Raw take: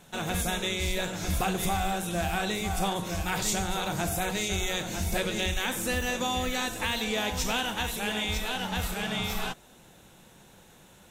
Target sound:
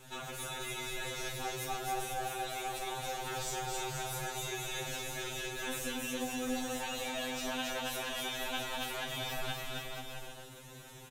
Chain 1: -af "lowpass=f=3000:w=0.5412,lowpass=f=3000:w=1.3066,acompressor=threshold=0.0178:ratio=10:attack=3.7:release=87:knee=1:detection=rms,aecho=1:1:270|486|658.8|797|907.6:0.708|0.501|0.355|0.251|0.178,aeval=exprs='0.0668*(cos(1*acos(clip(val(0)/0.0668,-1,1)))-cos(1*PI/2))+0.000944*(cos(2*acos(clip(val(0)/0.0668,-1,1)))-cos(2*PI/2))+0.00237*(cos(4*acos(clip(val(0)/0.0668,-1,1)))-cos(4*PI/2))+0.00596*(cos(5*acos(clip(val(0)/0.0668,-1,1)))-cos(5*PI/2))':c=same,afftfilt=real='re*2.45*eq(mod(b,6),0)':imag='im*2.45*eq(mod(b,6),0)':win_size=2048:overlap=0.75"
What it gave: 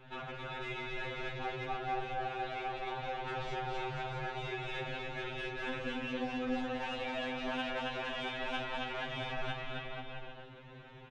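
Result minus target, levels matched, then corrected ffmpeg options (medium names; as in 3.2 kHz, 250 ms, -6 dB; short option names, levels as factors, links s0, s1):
4 kHz band -3.5 dB
-af "acompressor=threshold=0.0178:ratio=10:attack=3.7:release=87:knee=1:detection=rms,aecho=1:1:270|486|658.8|797|907.6:0.708|0.501|0.355|0.251|0.178,aeval=exprs='0.0668*(cos(1*acos(clip(val(0)/0.0668,-1,1)))-cos(1*PI/2))+0.000944*(cos(2*acos(clip(val(0)/0.0668,-1,1)))-cos(2*PI/2))+0.00237*(cos(4*acos(clip(val(0)/0.0668,-1,1)))-cos(4*PI/2))+0.00596*(cos(5*acos(clip(val(0)/0.0668,-1,1)))-cos(5*PI/2))':c=same,afftfilt=real='re*2.45*eq(mod(b,6),0)':imag='im*2.45*eq(mod(b,6),0)':win_size=2048:overlap=0.75"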